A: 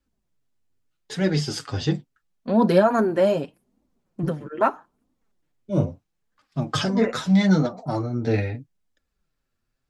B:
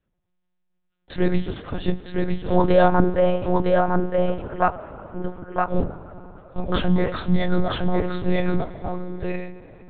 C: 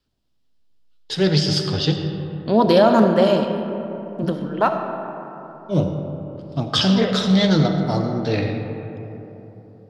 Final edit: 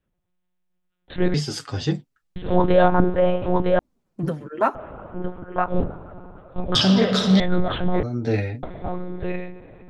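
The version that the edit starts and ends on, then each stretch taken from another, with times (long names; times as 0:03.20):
B
0:01.34–0:02.36: punch in from A
0:03.79–0:04.75: punch in from A
0:06.75–0:07.40: punch in from C
0:08.03–0:08.63: punch in from A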